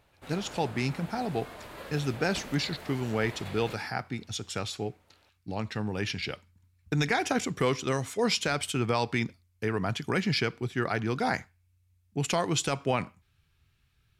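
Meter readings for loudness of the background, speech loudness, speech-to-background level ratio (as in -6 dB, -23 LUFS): -44.5 LUFS, -30.5 LUFS, 14.0 dB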